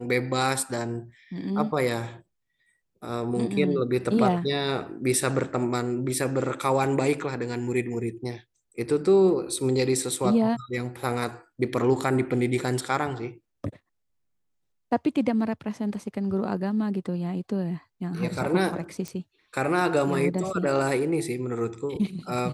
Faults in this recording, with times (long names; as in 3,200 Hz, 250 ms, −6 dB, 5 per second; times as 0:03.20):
0:19.08: click −20 dBFS